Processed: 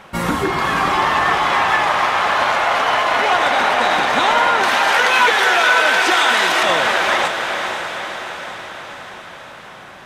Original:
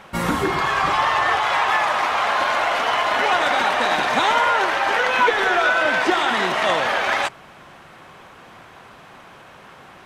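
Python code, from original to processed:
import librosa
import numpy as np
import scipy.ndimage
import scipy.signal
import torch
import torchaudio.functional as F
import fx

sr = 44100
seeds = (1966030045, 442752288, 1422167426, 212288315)

y = fx.tilt_eq(x, sr, slope=3.0, at=(4.63, 6.63))
y = fx.echo_diffused(y, sr, ms=502, feedback_pct=60, wet_db=-6)
y = F.gain(torch.from_numpy(y), 2.0).numpy()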